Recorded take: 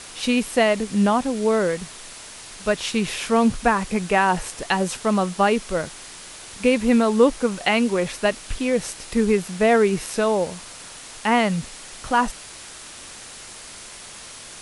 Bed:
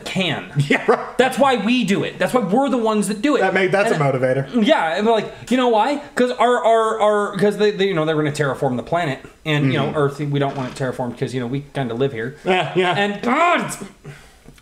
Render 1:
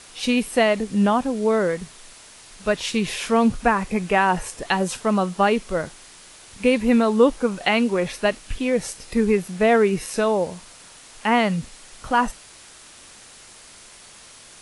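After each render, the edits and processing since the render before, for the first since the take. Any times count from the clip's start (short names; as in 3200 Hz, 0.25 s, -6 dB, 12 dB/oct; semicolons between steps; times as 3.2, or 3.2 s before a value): noise print and reduce 6 dB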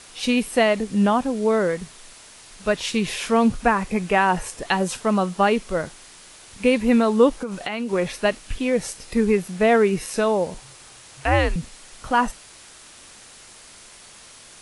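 7.29–7.93 compressor 10:1, threshold -23 dBFS; 10.54–11.56 frequency shift -150 Hz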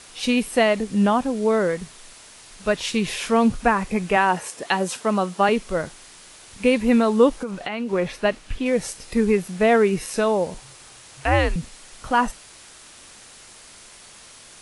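4.16–5.49 HPF 190 Hz; 7.51–8.66 high shelf 5900 Hz -10 dB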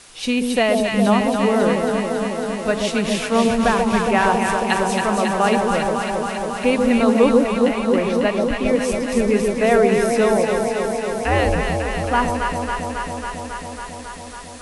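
echo with dull and thin repeats by turns 0.137 s, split 830 Hz, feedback 89%, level -2.5 dB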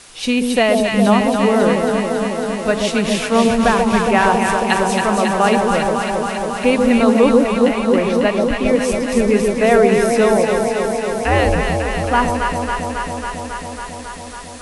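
gain +3 dB; limiter -1 dBFS, peak gain reduction 2 dB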